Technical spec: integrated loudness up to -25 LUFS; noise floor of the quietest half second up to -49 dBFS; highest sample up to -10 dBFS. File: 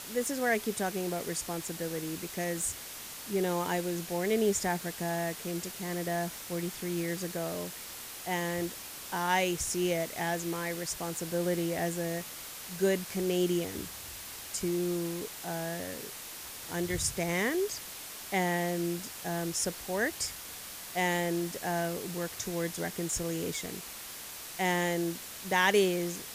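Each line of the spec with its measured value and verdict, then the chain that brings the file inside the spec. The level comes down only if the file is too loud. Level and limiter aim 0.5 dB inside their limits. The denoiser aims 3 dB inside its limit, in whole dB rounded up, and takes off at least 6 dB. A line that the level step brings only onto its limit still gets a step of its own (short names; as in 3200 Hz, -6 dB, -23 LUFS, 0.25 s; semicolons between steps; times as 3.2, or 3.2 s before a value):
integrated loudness -32.5 LUFS: OK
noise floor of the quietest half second -44 dBFS: fail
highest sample -12.5 dBFS: OK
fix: denoiser 8 dB, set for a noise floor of -44 dBFS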